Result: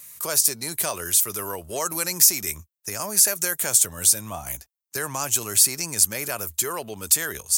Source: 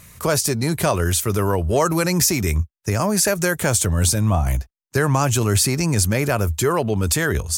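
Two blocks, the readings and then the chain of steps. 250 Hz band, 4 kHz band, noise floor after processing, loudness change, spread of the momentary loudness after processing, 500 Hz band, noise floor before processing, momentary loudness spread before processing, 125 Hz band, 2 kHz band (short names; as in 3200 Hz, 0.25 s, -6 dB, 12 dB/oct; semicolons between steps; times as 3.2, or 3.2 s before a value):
-16.0 dB, -1.5 dB, -81 dBFS, -1.0 dB, 15 LU, -12.0 dB, -72 dBFS, 5 LU, -21.0 dB, -7.0 dB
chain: RIAA curve recording; gain -9 dB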